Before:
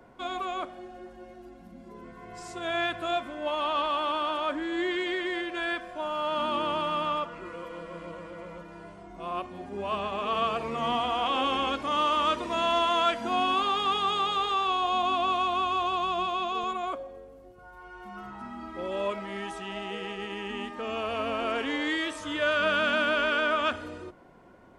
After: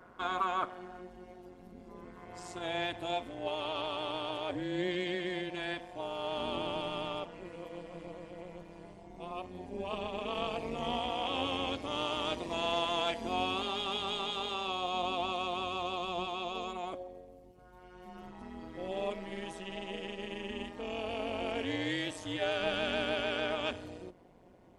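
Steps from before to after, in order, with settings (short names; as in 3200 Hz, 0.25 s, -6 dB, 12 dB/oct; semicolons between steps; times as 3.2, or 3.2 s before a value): bell 1300 Hz +9 dB 0.68 oct, from 1.01 s -3 dB, from 2.66 s -14 dB; AM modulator 180 Hz, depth 70%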